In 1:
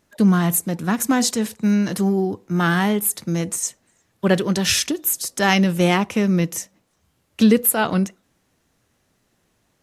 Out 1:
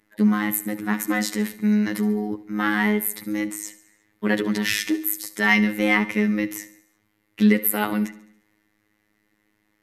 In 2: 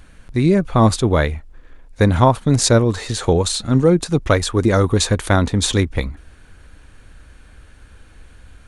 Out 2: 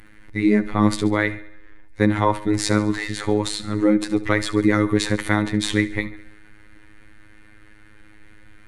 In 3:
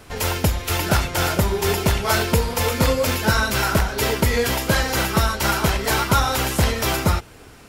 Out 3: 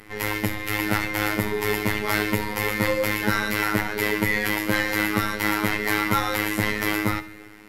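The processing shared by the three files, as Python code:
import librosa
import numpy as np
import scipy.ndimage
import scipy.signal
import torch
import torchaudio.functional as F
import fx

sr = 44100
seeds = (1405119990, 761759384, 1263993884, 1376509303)

p1 = fx.transient(x, sr, attack_db=-2, sustain_db=2)
p2 = fx.high_shelf(p1, sr, hz=4500.0, db=-8.0)
p3 = fx.robotise(p2, sr, hz=105.0)
p4 = fx.graphic_eq_31(p3, sr, hz=(100, 315, 630, 2000, 6300, 12500), db=(-8, 5, -6, 12, -3, 10))
p5 = p4 + fx.echo_feedback(p4, sr, ms=70, feedback_pct=54, wet_db=-16.5, dry=0)
y = F.gain(torch.from_numpy(p5), -1.0).numpy()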